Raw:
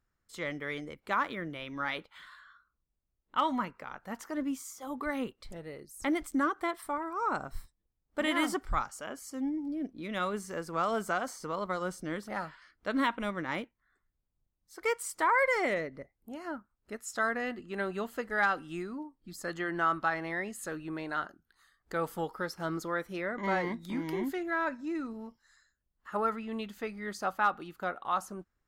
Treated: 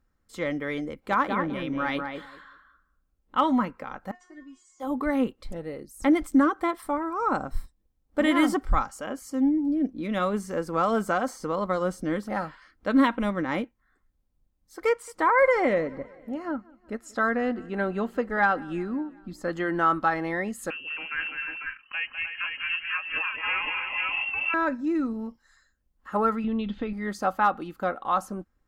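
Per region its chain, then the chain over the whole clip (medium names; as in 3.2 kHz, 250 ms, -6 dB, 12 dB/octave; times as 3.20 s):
0.91–3.39 s: hard clipper -18.5 dBFS + filtered feedback delay 193 ms, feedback 18%, low-pass 1.5 kHz, level -3.5 dB
4.11–4.80 s: steep low-pass 8 kHz + feedback comb 360 Hz, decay 0.23 s, mix 100%
14.89–19.57 s: low-pass 3.5 kHz 6 dB/octave + feedback delay 185 ms, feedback 60%, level -24 dB
20.70–24.54 s: distance through air 390 m + multi-tap echo 202/304/495/498/502 ms -7/-8/-7/-8/-7.5 dB + frequency inversion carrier 3 kHz
26.44–26.93 s: compression 3:1, threshold -39 dBFS + resonant low-pass 3.5 kHz, resonance Q 4.5 + tilt EQ -2.5 dB/octave
whole clip: tilt shelf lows +4 dB, about 1.1 kHz; comb 3.8 ms, depth 32%; trim +5 dB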